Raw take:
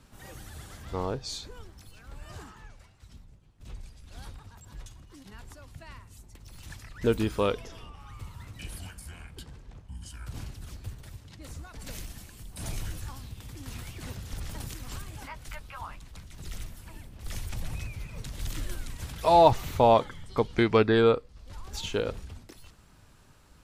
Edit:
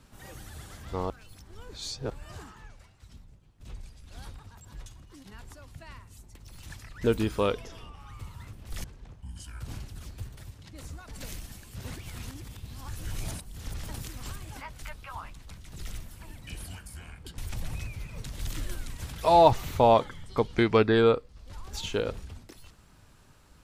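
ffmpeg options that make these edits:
-filter_complex "[0:a]asplit=9[s0][s1][s2][s3][s4][s5][s6][s7][s8];[s0]atrim=end=1.102[s9];[s1]atrim=start=1.098:end=2.102,asetpts=PTS-STARTPTS,areverse[s10];[s2]atrim=start=2.098:end=8.532[s11];[s3]atrim=start=17.068:end=17.382[s12];[s4]atrim=start=9.498:end=12.412[s13];[s5]atrim=start=12.408:end=14.222,asetpts=PTS-STARTPTS,areverse[s14];[s6]atrim=start=14.218:end=17.072[s15];[s7]atrim=start=8.528:end=9.502[s16];[s8]atrim=start=17.378[s17];[s9][s10]acrossfade=d=0.004:c1=hsin:c2=hsin[s18];[s18][s11]acrossfade=d=0.004:c1=hsin:c2=hsin[s19];[s19][s12]acrossfade=d=0.004:c1=hsin:c2=hsin[s20];[s20][s13]acrossfade=d=0.004:c1=hsin:c2=hsin[s21];[s21][s14]acrossfade=d=0.004:c1=hsin:c2=hsin[s22];[s22][s15]acrossfade=d=0.004:c1=hsin:c2=hsin[s23];[s23][s16]acrossfade=d=0.004:c1=hsin:c2=hsin[s24];[s24][s17]acrossfade=d=0.004:c1=hsin:c2=hsin"

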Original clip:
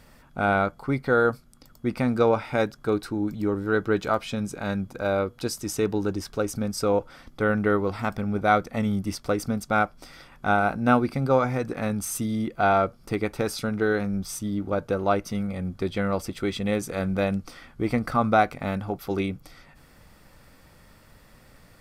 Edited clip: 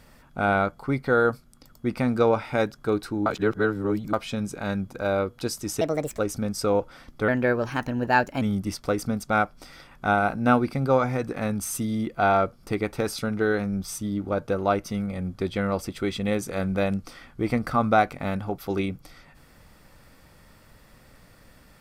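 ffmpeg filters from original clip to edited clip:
-filter_complex "[0:a]asplit=7[s0][s1][s2][s3][s4][s5][s6];[s0]atrim=end=3.262[s7];[s1]atrim=start=3.258:end=4.132,asetpts=PTS-STARTPTS,areverse[s8];[s2]atrim=start=4.128:end=5.814[s9];[s3]atrim=start=5.81:end=6.38,asetpts=PTS-STARTPTS,asetrate=66150,aresample=44100[s10];[s4]atrim=start=6.376:end=7.474[s11];[s5]atrim=start=7.47:end=8.82,asetpts=PTS-STARTPTS,asetrate=52479,aresample=44100,atrim=end_sample=50029,asetpts=PTS-STARTPTS[s12];[s6]atrim=start=8.816[s13];[s7][s8]acrossfade=d=0.004:c1=hsin:c2=hsin[s14];[s14][s9]acrossfade=d=0.004:c1=hsin:c2=hsin[s15];[s15][s10]acrossfade=d=0.004:c1=hsin:c2=hsin[s16];[s16][s11]acrossfade=d=0.004:c1=hsin:c2=hsin[s17];[s17][s12]acrossfade=d=0.004:c1=hsin:c2=hsin[s18];[s18][s13]acrossfade=d=0.004:c1=hsin:c2=hsin"

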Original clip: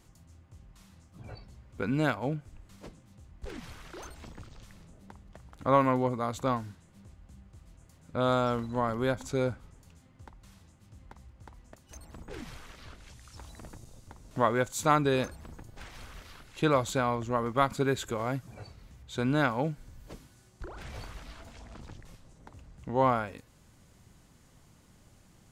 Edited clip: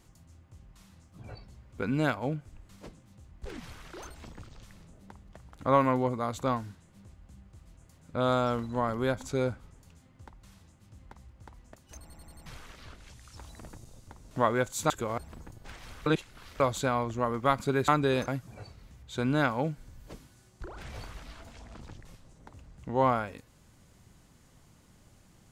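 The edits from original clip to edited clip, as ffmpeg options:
-filter_complex "[0:a]asplit=12[s0][s1][s2][s3][s4][s5][s6][s7][s8][s9][s10][s11];[s0]atrim=end=12.102[s12];[s1]atrim=start=12.008:end=12.102[s13];[s2]atrim=start=12.008:end=12.102[s14];[s3]atrim=start=12.008:end=12.102[s15];[s4]atrim=start=12.008:end=12.102[s16];[s5]atrim=start=12.458:end=14.902[s17];[s6]atrim=start=17.998:end=18.282[s18];[s7]atrim=start=15.298:end=16.182[s19];[s8]atrim=start=16.178:end=16.722,asetpts=PTS-STARTPTS,areverse[s20];[s9]atrim=start=16.718:end=18.002[s21];[s10]atrim=start=14.898:end=15.302[s22];[s11]atrim=start=18.278[s23];[s12][s13]acrossfade=d=0.004:c1=hsin:c2=hsin[s24];[s24][s14]acrossfade=d=0.004:c1=hsin:c2=hsin[s25];[s25][s15]acrossfade=d=0.004:c1=hsin:c2=hsin[s26];[s26][s16]acrossfade=d=0.004:c1=hsin:c2=hsin[s27];[s27][s17]acrossfade=d=0.004:c1=hsin:c2=hsin[s28];[s28][s18]acrossfade=d=0.004:c1=hsin:c2=hsin[s29];[s29][s19]acrossfade=d=0.004:c1=hsin:c2=hsin[s30];[s30][s20]acrossfade=d=0.004:c1=hsin:c2=hsin[s31];[s31][s21]acrossfade=d=0.004:c1=hsin:c2=hsin[s32];[s32][s22]acrossfade=d=0.004:c1=hsin:c2=hsin[s33];[s33][s23]acrossfade=d=0.004:c1=hsin:c2=hsin"

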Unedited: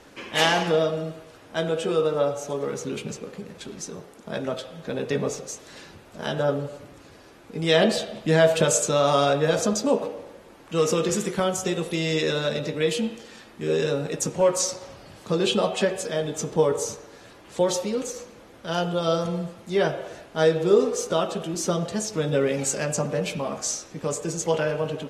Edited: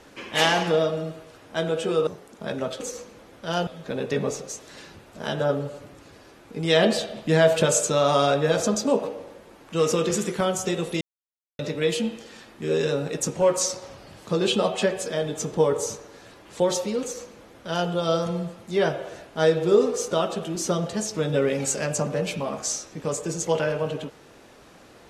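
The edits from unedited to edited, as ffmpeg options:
-filter_complex "[0:a]asplit=6[s0][s1][s2][s3][s4][s5];[s0]atrim=end=2.072[s6];[s1]atrim=start=3.928:end=4.662[s7];[s2]atrim=start=18.008:end=18.882[s8];[s3]atrim=start=4.658:end=12,asetpts=PTS-STARTPTS,afade=t=out:st=7.338:d=0.004:c=hsin[s9];[s4]atrim=start=12:end=12.58,asetpts=PTS-STARTPTS,volume=0[s10];[s5]atrim=start=12.58,asetpts=PTS-STARTPTS,afade=t=in:d=0.004:c=hsin[s11];[s6][s7]acrossfade=d=0.004:c1=hsin:c2=hsin[s12];[s12][s8]acrossfade=d=0.004:c1=hsin:c2=hsin[s13];[s9][s10][s11]concat=n=3:v=0:a=1[s14];[s13][s14]acrossfade=d=0.004:c1=hsin:c2=hsin"

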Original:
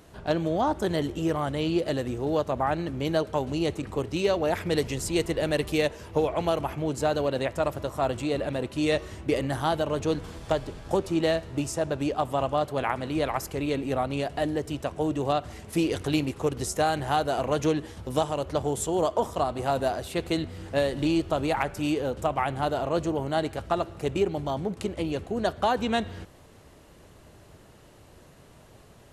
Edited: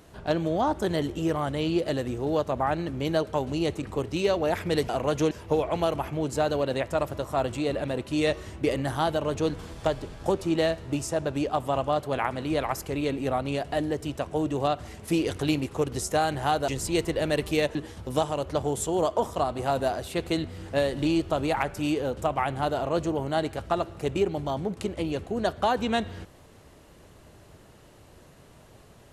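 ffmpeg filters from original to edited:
-filter_complex "[0:a]asplit=5[s0][s1][s2][s3][s4];[s0]atrim=end=4.892[s5];[s1]atrim=start=17.328:end=17.752[s6];[s2]atrim=start=5.958:end=17.332[s7];[s3]atrim=start=4.888:end=5.962[s8];[s4]atrim=start=17.748[s9];[s5][s6]acrossfade=d=0.004:c1=hsin:c2=hsin[s10];[s10][s7]acrossfade=d=0.004:c1=hsin:c2=hsin[s11];[s11][s8]acrossfade=d=0.004:c1=hsin:c2=hsin[s12];[s12][s9]acrossfade=d=0.004:c1=hsin:c2=hsin"

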